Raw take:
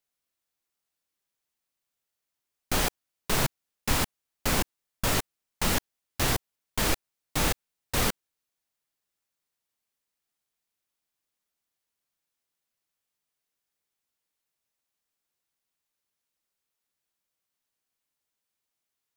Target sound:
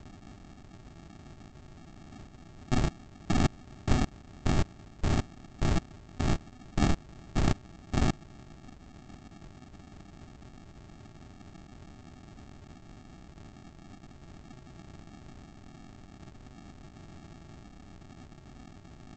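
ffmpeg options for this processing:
-af "aeval=exprs='val(0)+0.5*0.0133*sgn(val(0))':c=same,aresample=16000,acrusher=samples=32:mix=1:aa=0.000001,aresample=44100"

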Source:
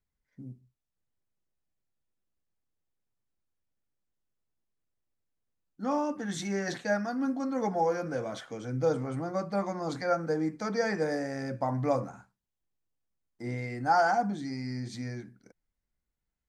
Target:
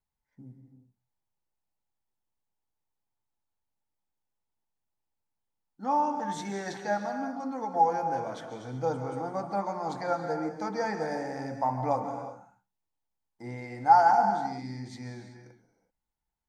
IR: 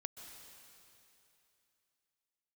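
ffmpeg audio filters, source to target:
-filter_complex "[0:a]equalizer=f=870:t=o:w=0.41:g=14,asettb=1/sr,asplit=3[a][b][c];[a]atrim=end=7.044[d];[b]atrim=start=7.04:end=7.74,asetpts=PTS-STARTPTS,afade=t=in:d=0.004:c=qsin,afade=t=out:st=0.696:d=0.004:c=qsin,acompressor=threshold=-27dB:ratio=6[e];[c]atrim=start=7.736[f];[d][e]acrossfade=d=0.004:c1=hsin:c2=qsin[g];[g][f]acrossfade=d=0.004:c1=qsin:c2=hsin[h];[1:a]atrim=start_sample=2205,afade=t=out:st=0.44:d=0.01,atrim=end_sample=19845[i];[h][i]afir=irnorm=-1:irlink=0"

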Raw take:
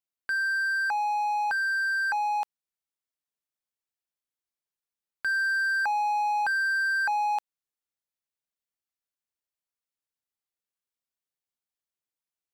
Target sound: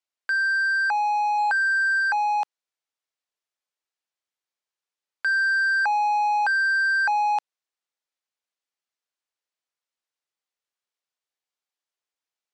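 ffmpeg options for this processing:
-filter_complex "[0:a]asettb=1/sr,asplit=3[a][b][c];[a]atrim=end=1.384[d];[b]atrim=start=1.38:end=2,asetpts=PTS-STARTPTS,afade=t=in:d=0.004:c=qsin,afade=t=out:st=0.616:d=0.004:c=qsin,aeval=exprs='val(0)+0.5*0.0106*sgn(val(0))':c=same[e];[c]atrim=start=1.996[f];[d][e]acrossfade=d=0.004:c1=hsin:c2=qsin[g];[g][f]acrossfade=d=0.004:c1=qsin:c2=hsin,highpass=410,lowpass=6.8k,volume=4.5dB"

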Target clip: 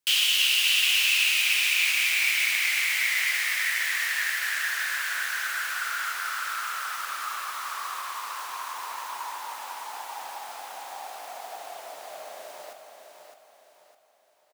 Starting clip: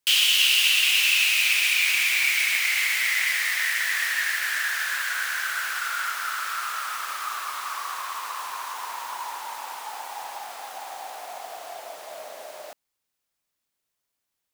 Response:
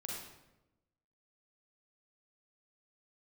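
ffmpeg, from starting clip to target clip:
-af "aecho=1:1:609|1218|1827|2436|3045:0.447|0.174|0.0679|0.0265|0.0103,volume=-3dB"

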